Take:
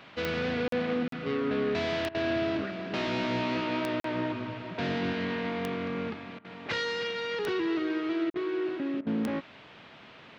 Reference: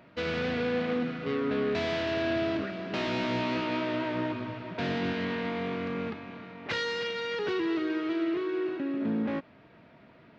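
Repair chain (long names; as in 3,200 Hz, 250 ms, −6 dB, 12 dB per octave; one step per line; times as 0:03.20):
click removal
repair the gap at 0:00.68/0:01.08/0:04.00/0:08.30, 43 ms
repair the gap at 0:02.09/0:06.39/0:08.30/0:09.01, 55 ms
noise reduction from a noise print 6 dB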